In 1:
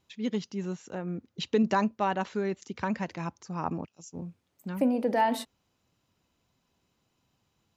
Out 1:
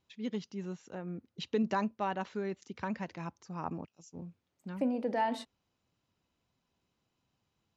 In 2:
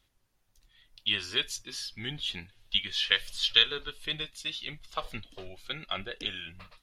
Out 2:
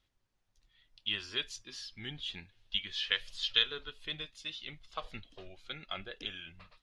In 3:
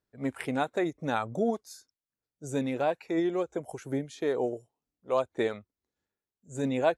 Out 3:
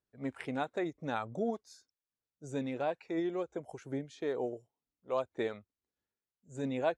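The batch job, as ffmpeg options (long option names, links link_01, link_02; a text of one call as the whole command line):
ffmpeg -i in.wav -af "lowpass=6700,volume=-6dB" out.wav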